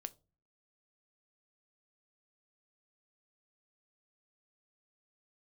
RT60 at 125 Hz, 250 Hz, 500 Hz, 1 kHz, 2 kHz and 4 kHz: 0.55, 0.55, 0.40, 0.30, 0.20, 0.25 s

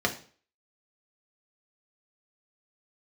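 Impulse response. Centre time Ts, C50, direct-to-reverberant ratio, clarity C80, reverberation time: 10 ms, 13.0 dB, 1.0 dB, 17.5 dB, 0.45 s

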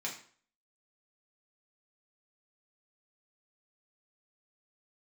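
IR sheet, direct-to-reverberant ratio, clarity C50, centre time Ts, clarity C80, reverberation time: -3.5 dB, 8.0 dB, 22 ms, 12.0 dB, 0.50 s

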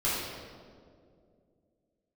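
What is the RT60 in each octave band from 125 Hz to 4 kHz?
2.9, 3.0, 2.7, 1.8, 1.3, 1.2 s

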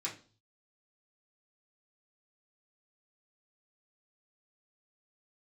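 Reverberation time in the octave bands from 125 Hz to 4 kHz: 0.80, 0.45, 0.40, 0.35, 0.30, 0.40 s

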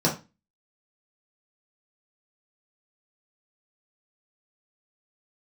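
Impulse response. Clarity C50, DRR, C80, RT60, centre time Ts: 10.0 dB, -5.0 dB, 16.5 dB, 0.25 s, 20 ms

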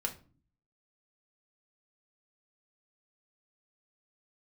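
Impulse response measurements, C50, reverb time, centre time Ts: 13.5 dB, 0.40 s, 10 ms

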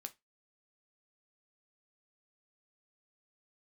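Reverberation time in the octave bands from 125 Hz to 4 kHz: 0.20, 0.20, 0.20, 0.20, 0.20, 0.20 s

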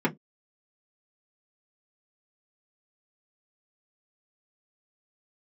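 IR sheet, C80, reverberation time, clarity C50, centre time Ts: 36.0 dB, not exponential, 22.0 dB, 14 ms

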